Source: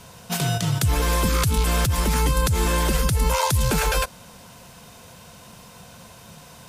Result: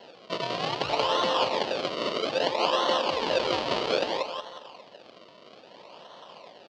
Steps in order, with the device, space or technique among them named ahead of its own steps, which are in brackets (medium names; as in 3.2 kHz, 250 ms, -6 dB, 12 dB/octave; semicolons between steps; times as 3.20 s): reverb removal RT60 0.94 s; 1.33–3.13 s: high-pass 170 Hz 12 dB/octave; feedback delay 180 ms, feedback 41%, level -3 dB; circuit-bent sampling toy (decimation with a swept rate 36×, swing 100% 0.61 Hz; cabinet simulation 450–5000 Hz, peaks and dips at 580 Hz +5 dB, 960 Hz +4 dB, 1.5 kHz -6 dB, 2.1 kHz -3 dB, 3 kHz +7 dB, 4.5 kHz +7 dB)